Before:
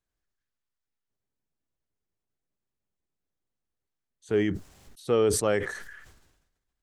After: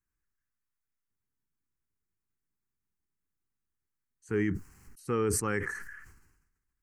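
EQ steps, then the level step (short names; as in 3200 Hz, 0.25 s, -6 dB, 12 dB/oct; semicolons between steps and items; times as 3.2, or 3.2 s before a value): fixed phaser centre 1500 Hz, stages 4; 0.0 dB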